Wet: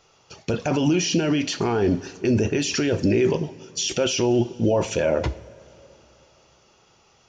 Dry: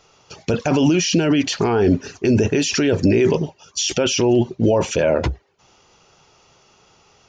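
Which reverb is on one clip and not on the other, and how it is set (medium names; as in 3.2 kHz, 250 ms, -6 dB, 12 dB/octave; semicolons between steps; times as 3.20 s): two-slope reverb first 0.41 s, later 3.3 s, from -17 dB, DRR 10.5 dB; trim -4.5 dB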